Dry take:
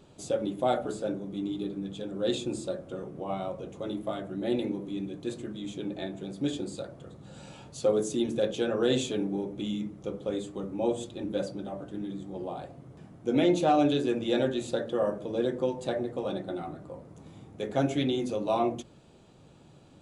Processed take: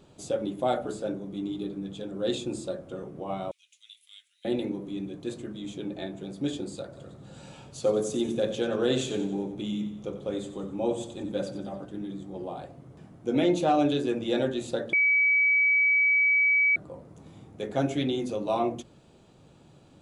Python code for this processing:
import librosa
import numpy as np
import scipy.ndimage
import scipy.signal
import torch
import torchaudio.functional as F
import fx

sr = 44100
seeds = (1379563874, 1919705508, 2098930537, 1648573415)

y = fx.steep_highpass(x, sr, hz=2500.0, slope=36, at=(3.51, 4.45))
y = fx.echo_feedback(y, sr, ms=91, feedback_pct=47, wet_db=-11.5, at=(6.92, 11.85), fade=0.02)
y = fx.edit(y, sr, fx.bleep(start_s=14.93, length_s=1.83, hz=2280.0, db=-19.0), tone=tone)